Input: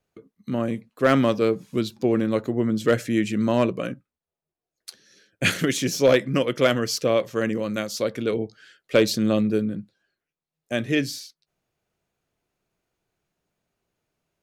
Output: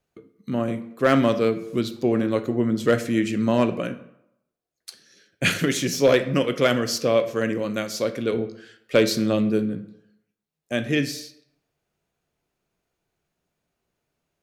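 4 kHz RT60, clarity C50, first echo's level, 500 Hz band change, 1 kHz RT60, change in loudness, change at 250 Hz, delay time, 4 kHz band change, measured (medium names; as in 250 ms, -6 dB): 0.50 s, 13.0 dB, no echo, +0.5 dB, 0.85 s, +0.5 dB, +0.5 dB, no echo, +0.5 dB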